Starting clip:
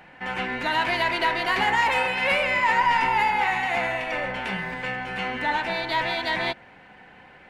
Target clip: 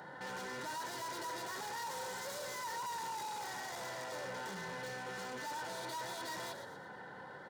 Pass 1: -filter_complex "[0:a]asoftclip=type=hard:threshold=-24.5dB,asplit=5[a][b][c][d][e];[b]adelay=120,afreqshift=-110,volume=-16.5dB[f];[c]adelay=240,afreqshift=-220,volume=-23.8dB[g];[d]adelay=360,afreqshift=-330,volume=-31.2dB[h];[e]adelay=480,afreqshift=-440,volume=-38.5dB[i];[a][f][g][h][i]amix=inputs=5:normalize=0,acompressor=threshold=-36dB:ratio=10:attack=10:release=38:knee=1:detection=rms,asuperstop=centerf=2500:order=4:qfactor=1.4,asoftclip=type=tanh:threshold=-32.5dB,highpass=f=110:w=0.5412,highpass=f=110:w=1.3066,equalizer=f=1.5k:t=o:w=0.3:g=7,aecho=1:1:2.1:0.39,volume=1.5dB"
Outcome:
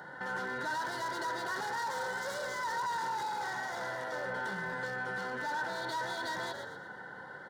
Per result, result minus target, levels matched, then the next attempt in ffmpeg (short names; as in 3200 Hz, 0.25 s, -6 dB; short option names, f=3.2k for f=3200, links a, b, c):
soft clip: distortion -11 dB; 2000 Hz band +3.0 dB; hard clip: distortion -4 dB
-filter_complex "[0:a]asoftclip=type=hard:threshold=-24.5dB,asplit=5[a][b][c][d][e];[b]adelay=120,afreqshift=-110,volume=-16.5dB[f];[c]adelay=240,afreqshift=-220,volume=-23.8dB[g];[d]adelay=360,afreqshift=-330,volume=-31.2dB[h];[e]adelay=480,afreqshift=-440,volume=-38.5dB[i];[a][f][g][h][i]amix=inputs=5:normalize=0,acompressor=threshold=-36dB:ratio=10:attack=10:release=38:knee=1:detection=rms,asuperstop=centerf=2500:order=4:qfactor=1.4,asoftclip=type=tanh:threshold=-42.5dB,highpass=f=110:w=0.5412,highpass=f=110:w=1.3066,equalizer=f=1.5k:t=o:w=0.3:g=7,aecho=1:1:2.1:0.39,volume=1.5dB"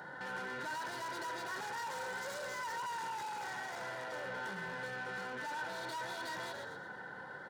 2000 Hz band +3.5 dB; hard clip: distortion -4 dB
-filter_complex "[0:a]asoftclip=type=hard:threshold=-24.5dB,asplit=5[a][b][c][d][e];[b]adelay=120,afreqshift=-110,volume=-16.5dB[f];[c]adelay=240,afreqshift=-220,volume=-23.8dB[g];[d]adelay=360,afreqshift=-330,volume=-31.2dB[h];[e]adelay=480,afreqshift=-440,volume=-38.5dB[i];[a][f][g][h][i]amix=inputs=5:normalize=0,acompressor=threshold=-36dB:ratio=10:attack=10:release=38:knee=1:detection=rms,asuperstop=centerf=2500:order=4:qfactor=1.4,asoftclip=type=tanh:threshold=-42.5dB,highpass=f=110:w=0.5412,highpass=f=110:w=1.3066,aecho=1:1:2.1:0.39,volume=1.5dB"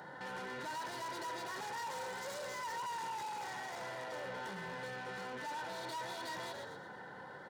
hard clip: distortion -4 dB
-filter_complex "[0:a]asoftclip=type=hard:threshold=-31.5dB,asplit=5[a][b][c][d][e];[b]adelay=120,afreqshift=-110,volume=-16.5dB[f];[c]adelay=240,afreqshift=-220,volume=-23.8dB[g];[d]adelay=360,afreqshift=-330,volume=-31.2dB[h];[e]adelay=480,afreqshift=-440,volume=-38.5dB[i];[a][f][g][h][i]amix=inputs=5:normalize=0,acompressor=threshold=-36dB:ratio=10:attack=10:release=38:knee=1:detection=rms,asuperstop=centerf=2500:order=4:qfactor=1.4,asoftclip=type=tanh:threshold=-42.5dB,highpass=f=110:w=0.5412,highpass=f=110:w=1.3066,aecho=1:1:2.1:0.39,volume=1.5dB"